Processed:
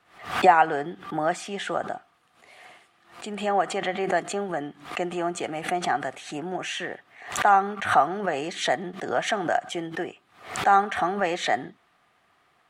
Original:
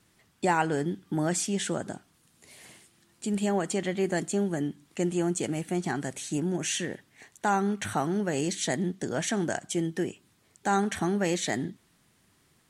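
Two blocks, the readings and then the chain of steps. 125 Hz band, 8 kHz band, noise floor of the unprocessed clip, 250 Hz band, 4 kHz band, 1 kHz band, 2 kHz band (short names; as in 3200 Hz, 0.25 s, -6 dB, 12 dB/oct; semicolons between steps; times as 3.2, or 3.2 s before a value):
-7.0 dB, -5.0 dB, -66 dBFS, -4.5 dB, +3.5 dB, +10.0 dB, +7.0 dB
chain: three-band isolator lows -15 dB, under 460 Hz, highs -18 dB, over 3300 Hz; small resonant body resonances 730/1200 Hz, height 10 dB, ringing for 35 ms; backwards sustainer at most 120 dB/s; gain +5.5 dB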